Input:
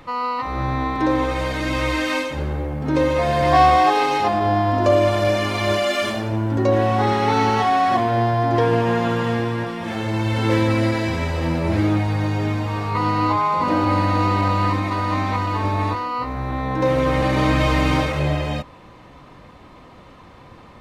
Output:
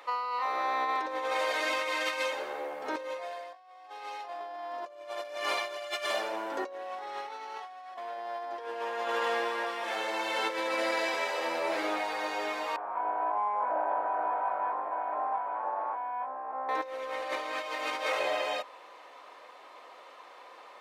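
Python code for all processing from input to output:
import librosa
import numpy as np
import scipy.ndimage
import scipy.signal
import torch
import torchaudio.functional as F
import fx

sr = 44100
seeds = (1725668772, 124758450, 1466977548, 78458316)

y = fx.chain(x, sr, fx.lower_of_two(delay_ms=1.2),
    fx.ladder_lowpass(hz=1300.0, resonance_pct=25),
    fx.doubler(ms=19.0, db=-3), at=(12.76, 16.69))
y = scipy.signal.sosfilt(scipy.signal.butter(4, 490.0, 'highpass', fs=sr, output='sos'), y)
y = fx.over_compress(y, sr, threshold_db=-26.0, ratio=-0.5)
y = F.gain(torch.from_numpy(y), -6.5).numpy()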